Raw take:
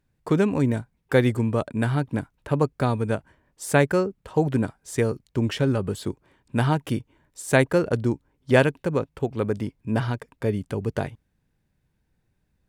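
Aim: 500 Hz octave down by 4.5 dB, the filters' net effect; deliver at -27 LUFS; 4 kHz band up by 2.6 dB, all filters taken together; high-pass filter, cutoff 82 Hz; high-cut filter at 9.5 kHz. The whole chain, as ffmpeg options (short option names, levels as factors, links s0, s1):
-af "highpass=82,lowpass=9500,equalizer=f=500:t=o:g=-5.5,equalizer=f=4000:t=o:g=3.5,volume=0.944"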